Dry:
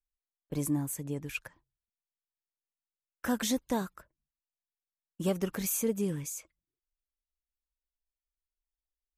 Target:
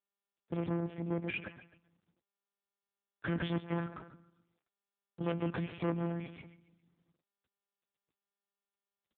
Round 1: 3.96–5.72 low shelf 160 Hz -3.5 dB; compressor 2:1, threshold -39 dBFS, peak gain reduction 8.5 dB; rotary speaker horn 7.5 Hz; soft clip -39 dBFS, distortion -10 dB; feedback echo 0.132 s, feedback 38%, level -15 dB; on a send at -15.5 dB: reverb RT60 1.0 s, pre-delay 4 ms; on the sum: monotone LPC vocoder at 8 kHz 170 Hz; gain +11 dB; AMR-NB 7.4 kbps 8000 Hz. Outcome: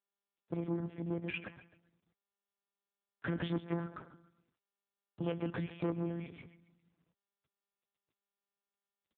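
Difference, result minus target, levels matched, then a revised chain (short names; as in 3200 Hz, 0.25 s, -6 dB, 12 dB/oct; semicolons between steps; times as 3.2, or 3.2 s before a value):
compressor: peak gain reduction +8.5 dB
3.96–5.72 low shelf 160 Hz -3.5 dB; rotary speaker horn 7.5 Hz; soft clip -39 dBFS, distortion -5 dB; feedback echo 0.132 s, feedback 38%, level -15 dB; on a send at -15.5 dB: reverb RT60 1.0 s, pre-delay 4 ms; on the sum: monotone LPC vocoder at 8 kHz 170 Hz; gain +11 dB; AMR-NB 7.4 kbps 8000 Hz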